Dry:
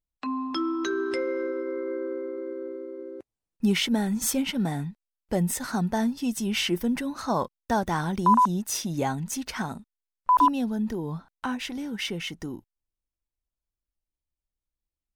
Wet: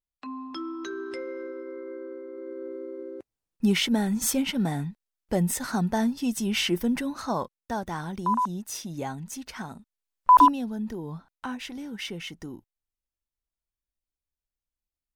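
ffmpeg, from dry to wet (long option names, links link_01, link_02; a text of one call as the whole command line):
ffmpeg -i in.wav -af "volume=12dB,afade=type=in:start_time=2.27:duration=0.59:silence=0.421697,afade=type=out:start_time=7.06:duration=0.52:silence=0.473151,afade=type=in:start_time=9.75:duration=0.62:silence=0.266073,afade=type=out:start_time=10.37:duration=0.2:silence=0.334965" out.wav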